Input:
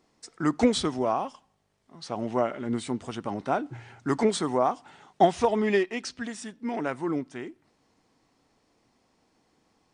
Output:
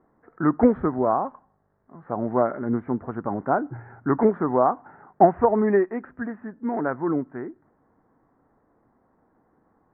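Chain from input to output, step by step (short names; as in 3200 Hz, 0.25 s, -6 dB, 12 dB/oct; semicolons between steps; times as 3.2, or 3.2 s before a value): steep low-pass 1700 Hz 48 dB/oct; gain +4.5 dB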